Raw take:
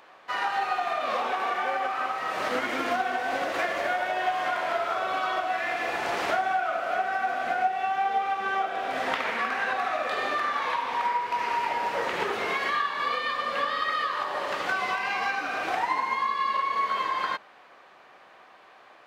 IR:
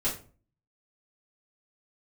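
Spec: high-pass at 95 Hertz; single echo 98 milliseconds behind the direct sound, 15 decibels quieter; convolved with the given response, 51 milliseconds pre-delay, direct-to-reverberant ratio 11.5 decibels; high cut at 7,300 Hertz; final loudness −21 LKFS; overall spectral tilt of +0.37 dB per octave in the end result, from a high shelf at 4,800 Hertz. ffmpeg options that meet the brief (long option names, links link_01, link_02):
-filter_complex "[0:a]highpass=95,lowpass=7300,highshelf=frequency=4800:gain=-6,aecho=1:1:98:0.178,asplit=2[link_01][link_02];[1:a]atrim=start_sample=2205,adelay=51[link_03];[link_02][link_03]afir=irnorm=-1:irlink=0,volume=-18.5dB[link_04];[link_01][link_04]amix=inputs=2:normalize=0,volume=6.5dB"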